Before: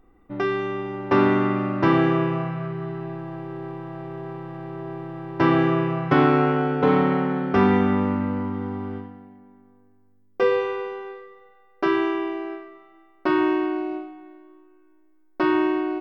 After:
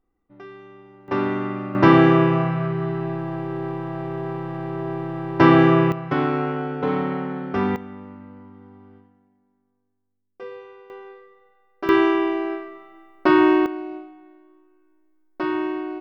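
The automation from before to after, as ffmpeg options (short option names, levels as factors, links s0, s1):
-af "asetnsamples=n=441:p=0,asendcmd='1.08 volume volume -5dB;1.75 volume volume 5.5dB;5.92 volume volume -4.5dB;7.76 volume volume -17dB;10.9 volume volume -5.5dB;11.89 volume volume 5.5dB;13.66 volume volume -4dB',volume=0.141"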